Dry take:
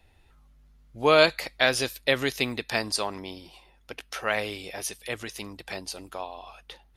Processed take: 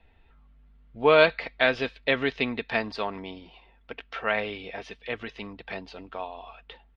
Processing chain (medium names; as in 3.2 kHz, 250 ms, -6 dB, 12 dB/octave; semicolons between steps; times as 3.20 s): low-pass 3.3 kHz 24 dB/octave; comb 4.4 ms, depth 35%